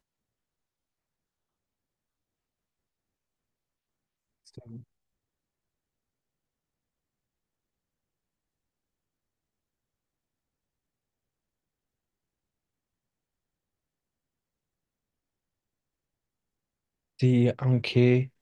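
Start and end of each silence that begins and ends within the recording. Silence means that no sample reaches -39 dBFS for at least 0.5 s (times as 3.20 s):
4.78–17.19 s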